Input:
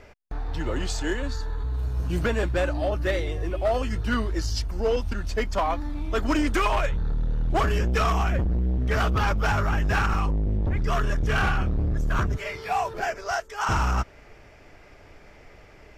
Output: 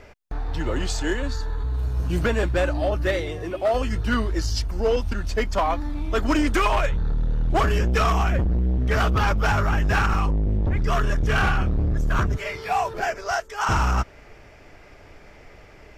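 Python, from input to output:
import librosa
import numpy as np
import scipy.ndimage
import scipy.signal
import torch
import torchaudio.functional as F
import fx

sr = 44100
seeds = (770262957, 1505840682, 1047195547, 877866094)

y = fx.highpass(x, sr, hz=fx.line((3.09, 58.0), (3.73, 180.0)), slope=12, at=(3.09, 3.73), fade=0.02)
y = F.gain(torch.from_numpy(y), 2.5).numpy()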